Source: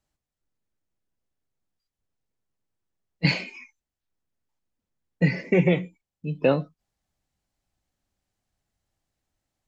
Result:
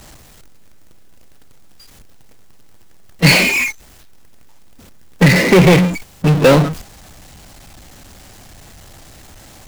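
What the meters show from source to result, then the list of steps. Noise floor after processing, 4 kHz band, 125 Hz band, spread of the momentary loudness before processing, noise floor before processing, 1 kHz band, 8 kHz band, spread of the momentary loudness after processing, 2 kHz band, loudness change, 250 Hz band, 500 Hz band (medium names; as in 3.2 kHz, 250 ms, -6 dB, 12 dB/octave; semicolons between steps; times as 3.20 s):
-44 dBFS, +16.5 dB, +13.0 dB, 18 LU, under -85 dBFS, +17.0 dB, no reading, 10 LU, +16.0 dB, +12.0 dB, +12.0 dB, +11.5 dB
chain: gate -49 dBFS, range -33 dB; power-law waveshaper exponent 0.35; trim +5 dB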